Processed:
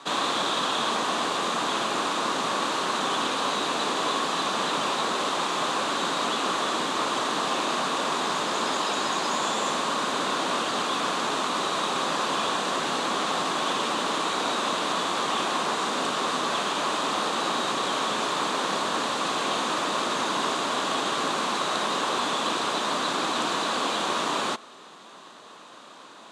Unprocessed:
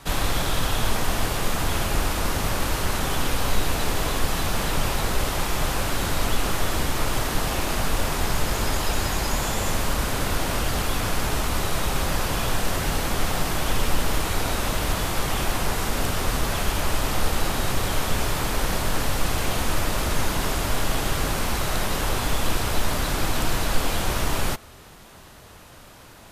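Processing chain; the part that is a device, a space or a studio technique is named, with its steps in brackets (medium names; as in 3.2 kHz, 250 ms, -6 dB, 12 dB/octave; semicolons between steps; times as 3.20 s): television speaker (cabinet simulation 220–7800 Hz, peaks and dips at 1.1 kHz +8 dB, 2.1 kHz -4 dB, 3.7 kHz +6 dB, 5.3 kHz -5 dB)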